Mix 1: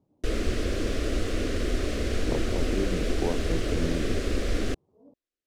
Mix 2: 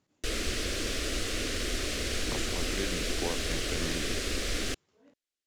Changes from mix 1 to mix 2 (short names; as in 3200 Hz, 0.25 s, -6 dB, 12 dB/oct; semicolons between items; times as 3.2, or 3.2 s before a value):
speech: remove steep low-pass 1000 Hz; master: add tilt shelf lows -7.5 dB, about 1500 Hz